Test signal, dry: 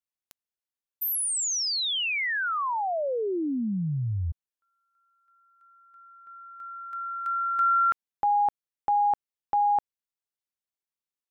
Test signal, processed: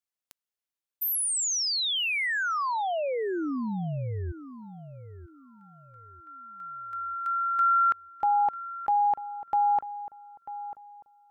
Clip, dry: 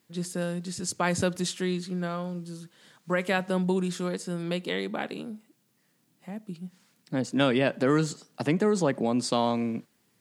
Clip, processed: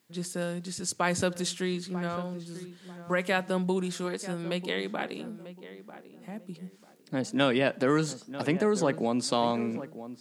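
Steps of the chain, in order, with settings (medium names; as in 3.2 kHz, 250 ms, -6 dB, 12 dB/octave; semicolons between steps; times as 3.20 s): bass shelf 270 Hz -4.5 dB; on a send: filtered feedback delay 943 ms, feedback 31%, low-pass 1.5 kHz, level -13 dB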